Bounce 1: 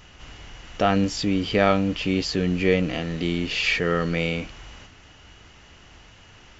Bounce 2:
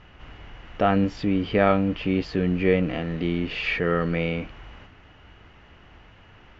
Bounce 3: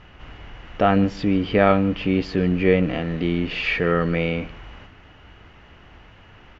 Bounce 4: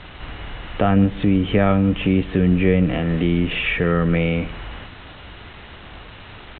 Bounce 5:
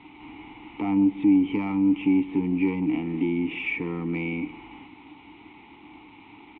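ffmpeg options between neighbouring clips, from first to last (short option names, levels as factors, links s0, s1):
-af "lowpass=2300"
-af "aecho=1:1:152:0.075,volume=1.41"
-filter_complex "[0:a]aresample=8000,acrusher=bits=7:mix=0:aa=0.000001,aresample=44100,acrossover=split=190[s0][s1];[s1]acompressor=threshold=0.0282:ratio=2[s2];[s0][s2]amix=inputs=2:normalize=0,volume=2.24"
-filter_complex "[0:a]aeval=exprs='0.631*(cos(1*acos(clip(val(0)/0.631,-1,1)))-cos(1*PI/2))+0.112*(cos(2*acos(clip(val(0)/0.631,-1,1)))-cos(2*PI/2))+0.0708*(cos(5*acos(clip(val(0)/0.631,-1,1)))-cos(5*PI/2))':c=same,asplit=3[s0][s1][s2];[s0]bandpass=f=300:t=q:w=8,volume=1[s3];[s1]bandpass=f=870:t=q:w=8,volume=0.501[s4];[s2]bandpass=f=2240:t=q:w=8,volume=0.355[s5];[s3][s4][s5]amix=inputs=3:normalize=0,asplit=2[s6][s7];[s7]adelay=260,highpass=300,lowpass=3400,asoftclip=type=hard:threshold=0.0708,volume=0.0398[s8];[s6][s8]amix=inputs=2:normalize=0,volume=1.26"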